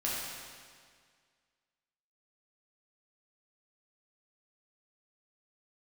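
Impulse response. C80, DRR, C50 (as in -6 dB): 0.0 dB, -7.5 dB, -2.0 dB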